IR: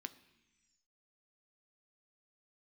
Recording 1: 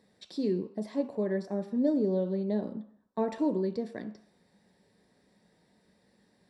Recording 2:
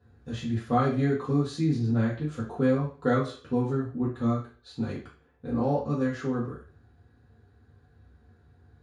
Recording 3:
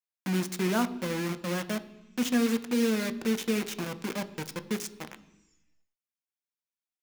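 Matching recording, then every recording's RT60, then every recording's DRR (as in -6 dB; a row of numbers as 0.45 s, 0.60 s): 3; 0.60 s, 0.40 s, 1.0 s; 7.5 dB, -7.0 dB, 10.0 dB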